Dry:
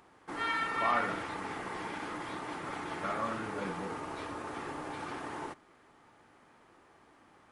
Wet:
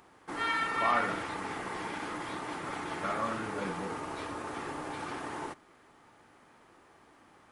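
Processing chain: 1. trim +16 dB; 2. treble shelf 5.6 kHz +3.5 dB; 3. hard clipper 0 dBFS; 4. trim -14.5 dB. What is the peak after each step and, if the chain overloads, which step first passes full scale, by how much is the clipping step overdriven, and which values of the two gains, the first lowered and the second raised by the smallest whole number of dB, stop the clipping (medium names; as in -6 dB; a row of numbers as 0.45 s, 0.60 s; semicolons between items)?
-1.5 dBFS, -1.5 dBFS, -1.5 dBFS, -16.0 dBFS; nothing clips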